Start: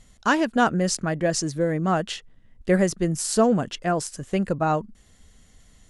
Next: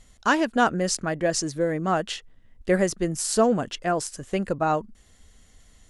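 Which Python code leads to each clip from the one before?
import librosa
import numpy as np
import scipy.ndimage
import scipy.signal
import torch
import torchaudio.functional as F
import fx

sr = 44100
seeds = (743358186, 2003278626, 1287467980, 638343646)

y = fx.peak_eq(x, sr, hz=160.0, db=-5.0, octaves=1.1)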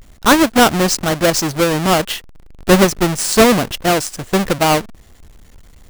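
y = fx.halfwave_hold(x, sr)
y = y * 10.0 ** (6.0 / 20.0)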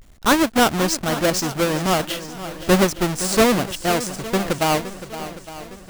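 y = fx.echo_swing(x, sr, ms=860, ratio=1.5, feedback_pct=43, wet_db=-13.5)
y = y * 10.0 ** (-5.5 / 20.0)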